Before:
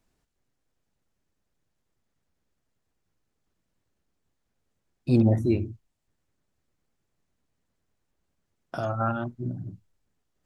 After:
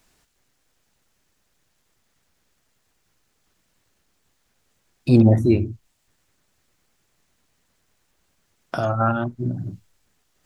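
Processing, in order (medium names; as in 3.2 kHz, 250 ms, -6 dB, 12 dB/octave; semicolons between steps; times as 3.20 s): tape noise reduction on one side only encoder only; trim +6.5 dB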